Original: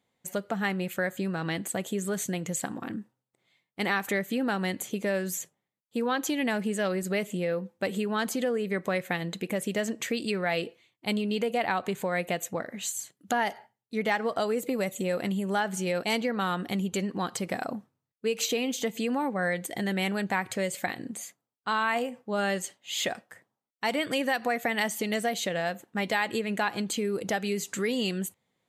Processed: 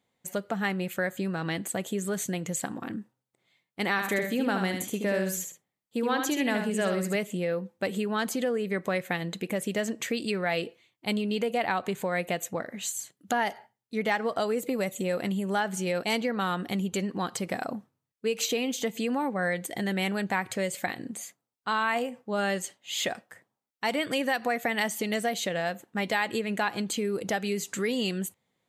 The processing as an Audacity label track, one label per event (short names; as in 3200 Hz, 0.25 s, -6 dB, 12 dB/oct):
3.910000	7.160000	tapped delay 74/129 ms -5.5/-14 dB